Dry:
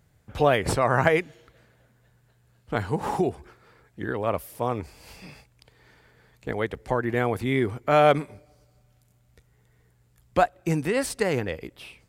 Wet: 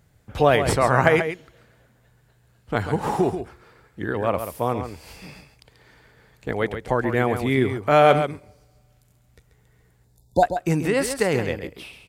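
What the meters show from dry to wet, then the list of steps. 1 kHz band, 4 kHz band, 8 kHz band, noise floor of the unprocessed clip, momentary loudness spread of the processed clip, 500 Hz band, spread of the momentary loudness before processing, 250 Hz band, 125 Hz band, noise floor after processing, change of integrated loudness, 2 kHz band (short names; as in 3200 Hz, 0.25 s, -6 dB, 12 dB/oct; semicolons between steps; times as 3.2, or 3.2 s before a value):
+3.5 dB, +3.5 dB, +3.5 dB, -63 dBFS, 19 LU, +3.5 dB, 15 LU, +3.5 dB, +3.5 dB, -60 dBFS, +3.5 dB, +3.5 dB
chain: spectral delete 10.05–10.43, 970–3500 Hz; echo 0.136 s -9 dB; gain +3 dB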